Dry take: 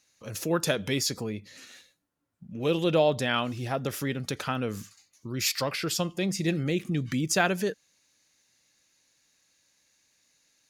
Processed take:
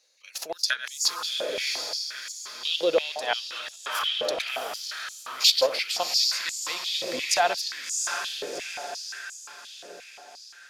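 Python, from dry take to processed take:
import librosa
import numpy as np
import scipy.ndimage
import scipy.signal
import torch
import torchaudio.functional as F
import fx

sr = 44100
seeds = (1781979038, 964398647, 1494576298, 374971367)

p1 = fx.reverse_delay(x, sr, ms=129, wet_db=-12.5)
p2 = fx.level_steps(p1, sr, step_db=9)
p3 = fx.peak_eq(p2, sr, hz=4400.0, db=9.0, octaves=0.81)
p4 = p3 + fx.echo_diffused(p3, sr, ms=714, feedback_pct=51, wet_db=-3.5, dry=0)
y = fx.filter_held_highpass(p4, sr, hz=5.7, low_hz=510.0, high_hz=7100.0)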